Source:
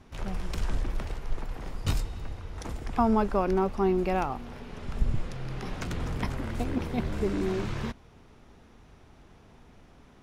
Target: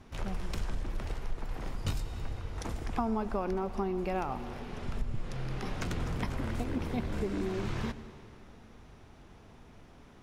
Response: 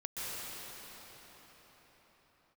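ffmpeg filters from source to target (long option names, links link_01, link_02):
-filter_complex "[0:a]acompressor=threshold=-29dB:ratio=5,asplit=2[link_01][link_02];[1:a]atrim=start_sample=2205,asetrate=88200,aresample=44100,adelay=9[link_03];[link_02][link_03]afir=irnorm=-1:irlink=0,volume=-10.5dB[link_04];[link_01][link_04]amix=inputs=2:normalize=0"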